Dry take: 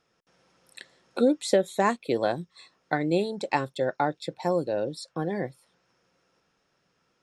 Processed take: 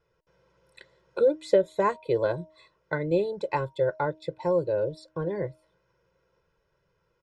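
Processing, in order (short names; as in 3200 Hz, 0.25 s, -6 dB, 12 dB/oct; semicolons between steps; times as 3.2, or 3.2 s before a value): LPF 1600 Hz 6 dB/oct; low shelf 92 Hz +11 dB; comb 2 ms, depth 98%; de-hum 313.8 Hz, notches 3; gain -3 dB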